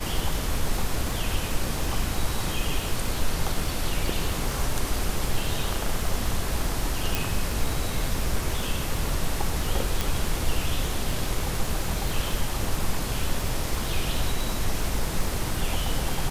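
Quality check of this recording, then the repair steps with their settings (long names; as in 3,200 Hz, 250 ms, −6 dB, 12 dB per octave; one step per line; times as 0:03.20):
surface crackle 55 per second −28 dBFS
0:07.15: click
0:10.01: click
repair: click removal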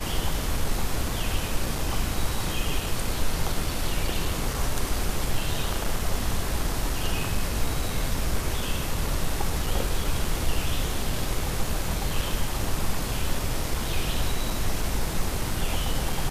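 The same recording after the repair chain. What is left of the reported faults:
0:07.15: click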